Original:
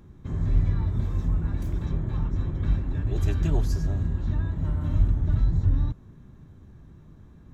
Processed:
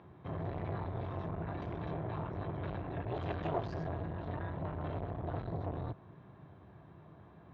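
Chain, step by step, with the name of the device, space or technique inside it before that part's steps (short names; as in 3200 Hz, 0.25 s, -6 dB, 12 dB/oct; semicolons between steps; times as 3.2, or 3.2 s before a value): HPF 64 Hz 12 dB/oct; guitar amplifier (tube stage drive 31 dB, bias 0.45; tone controls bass -5 dB, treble -1 dB; speaker cabinet 97–3500 Hz, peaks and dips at 240 Hz -9 dB, 690 Hz +10 dB, 1000 Hz +5 dB); gain +2.5 dB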